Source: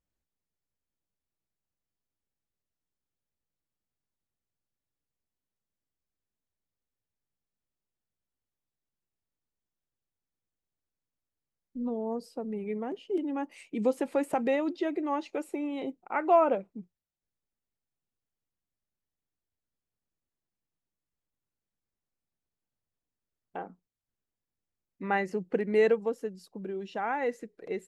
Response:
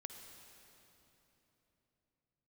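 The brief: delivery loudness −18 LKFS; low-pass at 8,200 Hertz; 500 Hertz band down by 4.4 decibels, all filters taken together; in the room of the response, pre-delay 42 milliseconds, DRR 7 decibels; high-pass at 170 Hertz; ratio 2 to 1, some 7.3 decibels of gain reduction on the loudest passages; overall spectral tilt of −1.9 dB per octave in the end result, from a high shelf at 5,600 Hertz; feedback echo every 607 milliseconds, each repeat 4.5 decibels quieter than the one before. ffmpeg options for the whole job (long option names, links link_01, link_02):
-filter_complex "[0:a]highpass=170,lowpass=8200,equalizer=frequency=500:width_type=o:gain=-5.5,highshelf=frequency=5600:gain=-3.5,acompressor=threshold=-33dB:ratio=2,aecho=1:1:607|1214|1821|2428|3035|3642|4249|4856|5463:0.596|0.357|0.214|0.129|0.0772|0.0463|0.0278|0.0167|0.01,asplit=2[link_01][link_02];[1:a]atrim=start_sample=2205,adelay=42[link_03];[link_02][link_03]afir=irnorm=-1:irlink=0,volume=-2.5dB[link_04];[link_01][link_04]amix=inputs=2:normalize=0,volume=17.5dB"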